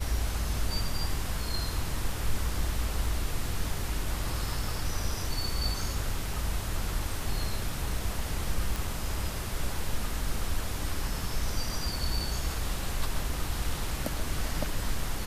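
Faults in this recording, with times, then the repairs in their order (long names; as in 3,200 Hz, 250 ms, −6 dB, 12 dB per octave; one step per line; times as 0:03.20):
0:08.76: click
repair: click removal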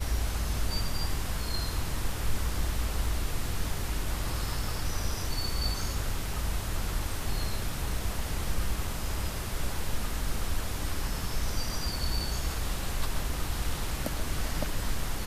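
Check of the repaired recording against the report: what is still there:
none of them is left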